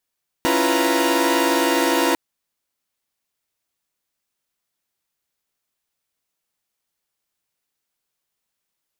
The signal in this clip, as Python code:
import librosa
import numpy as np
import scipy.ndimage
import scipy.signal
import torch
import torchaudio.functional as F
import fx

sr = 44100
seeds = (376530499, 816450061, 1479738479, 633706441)

y = fx.chord(sr, length_s=1.7, notes=(61, 64, 65, 71, 82), wave='saw', level_db=-20.5)